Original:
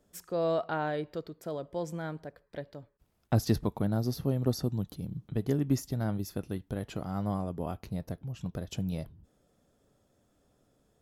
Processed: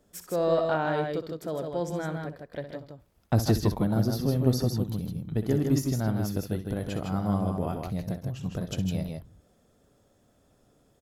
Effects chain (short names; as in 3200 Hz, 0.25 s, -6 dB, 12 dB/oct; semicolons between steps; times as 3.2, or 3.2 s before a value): in parallel at -10.5 dB: soft clip -28 dBFS, distortion -9 dB; on the sum: tapped delay 63/138/158 ms -11.5/-15/-4.5 dB; gain +1.5 dB